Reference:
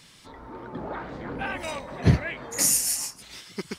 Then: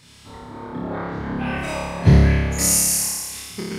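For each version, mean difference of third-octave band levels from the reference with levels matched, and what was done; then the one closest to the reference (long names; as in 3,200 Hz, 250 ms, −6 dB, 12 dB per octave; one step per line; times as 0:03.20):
5.0 dB: parametric band 96 Hz +8 dB 1.8 octaves
on a send: flutter between parallel walls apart 4.9 metres, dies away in 1.5 s
on the sum: level −1 dB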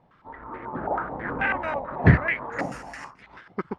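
7.5 dB: mu-law and A-law mismatch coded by A
low-pass on a step sequencer 9.2 Hz 770–2,000 Hz
level +3 dB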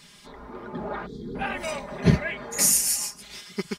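2.0 dB: gain on a spectral selection 0:01.06–0:01.35, 490–3,200 Hz −25 dB
comb filter 4.9 ms, depth 69%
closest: third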